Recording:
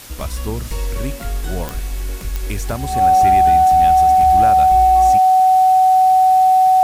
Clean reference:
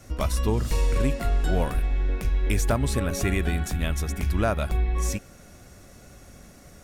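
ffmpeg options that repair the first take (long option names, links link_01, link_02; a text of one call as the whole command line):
ffmpeg -i in.wav -af "adeclick=threshold=4,bandreject=frequency=750:width=30,afwtdn=0.014" out.wav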